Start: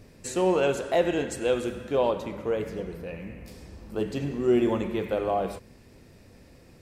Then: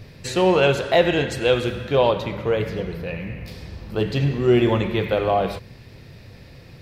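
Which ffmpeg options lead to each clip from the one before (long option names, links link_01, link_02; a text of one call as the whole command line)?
ffmpeg -i in.wav -af "equalizer=frequency=125:width_type=o:width=1:gain=9,equalizer=frequency=250:width_type=o:width=1:gain=-5,equalizer=frequency=2000:width_type=o:width=1:gain=3,equalizer=frequency=4000:width_type=o:width=1:gain=8,equalizer=frequency=8000:width_type=o:width=1:gain=-9,volume=6.5dB" out.wav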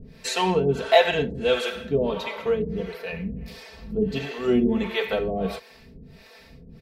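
ffmpeg -i in.wav -filter_complex "[0:a]aecho=1:1:4.5:0.93,acrossover=split=440[link_01][link_02];[link_01]aeval=exprs='val(0)*(1-1/2+1/2*cos(2*PI*1.5*n/s))':channel_layout=same[link_03];[link_02]aeval=exprs='val(0)*(1-1/2-1/2*cos(2*PI*1.5*n/s))':channel_layout=same[link_04];[link_03][link_04]amix=inputs=2:normalize=0" out.wav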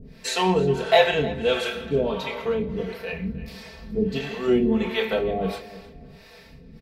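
ffmpeg -i in.wav -filter_complex "[0:a]asplit=2[link_01][link_02];[link_02]adelay=27,volume=-7dB[link_03];[link_01][link_03]amix=inputs=2:normalize=0,asplit=2[link_04][link_05];[link_05]adelay=310,lowpass=frequency=4300:poles=1,volume=-16.5dB,asplit=2[link_06][link_07];[link_07]adelay=310,lowpass=frequency=4300:poles=1,volume=0.35,asplit=2[link_08][link_09];[link_09]adelay=310,lowpass=frequency=4300:poles=1,volume=0.35[link_10];[link_04][link_06][link_08][link_10]amix=inputs=4:normalize=0" out.wav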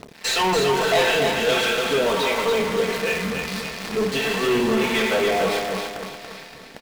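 ffmpeg -i in.wav -filter_complex "[0:a]acrusher=bits=7:dc=4:mix=0:aa=0.000001,asplit=2[link_01][link_02];[link_02]highpass=frequency=720:poles=1,volume=28dB,asoftclip=type=tanh:threshold=-4dB[link_03];[link_01][link_03]amix=inputs=2:normalize=0,lowpass=frequency=5300:poles=1,volume=-6dB,aecho=1:1:284|568|852|1136|1420:0.562|0.236|0.0992|0.0417|0.0175,volume=-8.5dB" out.wav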